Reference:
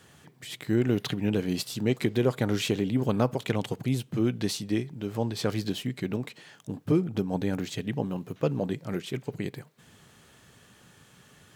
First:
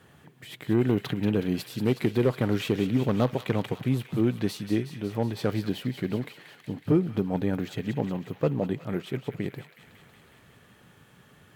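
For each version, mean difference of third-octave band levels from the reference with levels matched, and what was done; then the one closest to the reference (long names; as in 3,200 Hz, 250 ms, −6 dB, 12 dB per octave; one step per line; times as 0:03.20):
2.5 dB: parametric band 6,600 Hz −11 dB 1.8 octaves
harmonic generator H 5 −17 dB, 7 −22 dB, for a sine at −10.5 dBFS
on a send: delay with a high-pass on its return 184 ms, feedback 73%, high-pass 1,600 Hz, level −8.5 dB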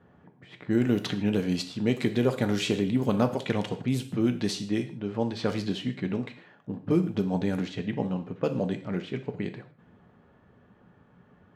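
4.5 dB: low-pass that shuts in the quiet parts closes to 990 Hz, open at −21.5 dBFS
reverb whose tail is shaped and stops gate 180 ms falling, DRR 7 dB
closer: first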